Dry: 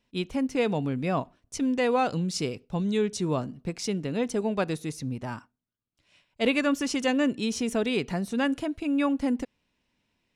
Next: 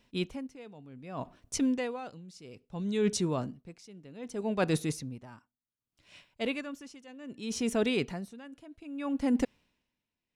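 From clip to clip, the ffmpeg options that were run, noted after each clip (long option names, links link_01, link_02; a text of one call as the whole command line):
ffmpeg -i in.wav -af "areverse,acompressor=threshold=-32dB:ratio=6,areverse,aeval=exprs='val(0)*pow(10,-23*(0.5-0.5*cos(2*PI*0.64*n/s))/20)':channel_layout=same,volume=8dB" out.wav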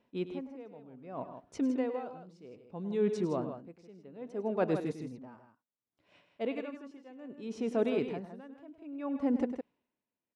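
ffmpeg -i in.wav -filter_complex "[0:a]bandpass=frequency=510:width_type=q:width=0.67:csg=0,asplit=2[link_01][link_02];[link_02]aecho=0:1:102|160.3:0.251|0.355[link_03];[link_01][link_03]amix=inputs=2:normalize=0" out.wav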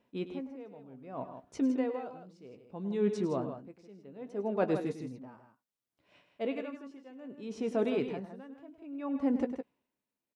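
ffmpeg -i in.wav -filter_complex "[0:a]asplit=2[link_01][link_02];[link_02]adelay=15,volume=-11dB[link_03];[link_01][link_03]amix=inputs=2:normalize=0" out.wav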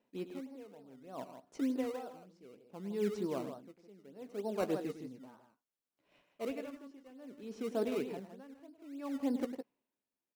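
ffmpeg -i in.wav -filter_complex "[0:a]highpass=180,asplit=2[link_01][link_02];[link_02]acrusher=samples=18:mix=1:aa=0.000001:lfo=1:lforange=18:lforate=3.3,volume=-7dB[link_03];[link_01][link_03]amix=inputs=2:normalize=0,volume=-7dB" out.wav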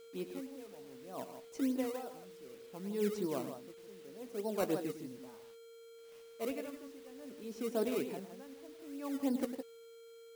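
ffmpeg -i in.wav -af "highshelf=frequency=8000:gain=11.5,aeval=exprs='val(0)+0.00251*sin(2*PI*460*n/s)':channel_layout=same,acrusher=bits=9:mix=0:aa=0.000001" out.wav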